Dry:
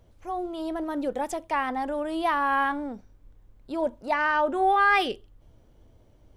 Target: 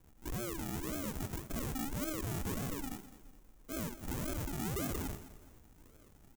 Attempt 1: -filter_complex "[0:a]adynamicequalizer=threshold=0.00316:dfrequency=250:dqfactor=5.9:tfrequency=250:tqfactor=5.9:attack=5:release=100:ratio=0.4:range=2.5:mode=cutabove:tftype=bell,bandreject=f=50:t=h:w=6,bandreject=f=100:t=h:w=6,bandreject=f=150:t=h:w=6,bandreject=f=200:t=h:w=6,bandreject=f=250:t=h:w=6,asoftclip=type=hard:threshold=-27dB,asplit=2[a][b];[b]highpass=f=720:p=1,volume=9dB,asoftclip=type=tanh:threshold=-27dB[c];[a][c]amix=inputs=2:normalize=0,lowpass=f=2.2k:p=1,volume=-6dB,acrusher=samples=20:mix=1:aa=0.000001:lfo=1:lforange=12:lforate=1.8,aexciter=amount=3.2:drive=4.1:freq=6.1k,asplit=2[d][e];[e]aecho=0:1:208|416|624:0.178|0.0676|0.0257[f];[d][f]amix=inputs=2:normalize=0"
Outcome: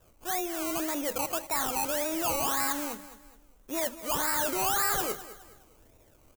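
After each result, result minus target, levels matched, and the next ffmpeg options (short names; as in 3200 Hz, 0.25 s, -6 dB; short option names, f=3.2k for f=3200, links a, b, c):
decimation with a swept rate: distortion -23 dB; hard clip: distortion -4 dB
-filter_complex "[0:a]adynamicequalizer=threshold=0.00316:dfrequency=250:dqfactor=5.9:tfrequency=250:tqfactor=5.9:attack=5:release=100:ratio=0.4:range=2.5:mode=cutabove:tftype=bell,bandreject=f=50:t=h:w=6,bandreject=f=100:t=h:w=6,bandreject=f=150:t=h:w=6,bandreject=f=200:t=h:w=6,bandreject=f=250:t=h:w=6,asoftclip=type=hard:threshold=-27dB,asplit=2[a][b];[b]highpass=f=720:p=1,volume=9dB,asoftclip=type=tanh:threshold=-27dB[c];[a][c]amix=inputs=2:normalize=0,lowpass=f=2.2k:p=1,volume=-6dB,acrusher=samples=66:mix=1:aa=0.000001:lfo=1:lforange=39.6:lforate=1.8,aexciter=amount=3.2:drive=4.1:freq=6.1k,asplit=2[d][e];[e]aecho=0:1:208|416|624:0.178|0.0676|0.0257[f];[d][f]amix=inputs=2:normalize=0"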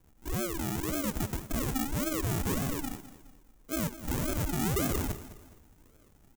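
hard clip: distortion -4 dB
-filter_complex "[0:a]adynamicequalizer=threshold=0.00316:dfrequency=250:dqfactor=5.9:tfrequency=250:tqfactor=5.9:attack=5:release=100:ratio=0.4:range=2.5:mode=cutabove:tftype=bell,bandreject=f=50:t=h:w=6,bandreject=f=100:t=h:w=6,bandreject=f=150:t=h:w=6,bandreject=f=200:t=h:w=6,bandreject=f=250:t=h:w=6,asoftclip=type=hard:threshold=-38.5dB,asplit=2[a][b];[b]highpass=f=720:p=1,volume=9dB,asoftclip=type=tanh:threshold=-27dB[c];[a][c]amix=inputs=2:normalize=0,lowpass=f=2.2k:p=1,volume=-6dB,acrusher=samples=66:mix=1:aa=0.000001:lfo=1:lforange=39.6:lforate=1.8,aexciter=amount=3.2:drive=4.1:freq=6.1k,asplit=2[d][e];[e]aecho=0:1:208|416|624:0.178|0.0676|0.0257[f];[d][f]amix=inputs=2:normalize=0"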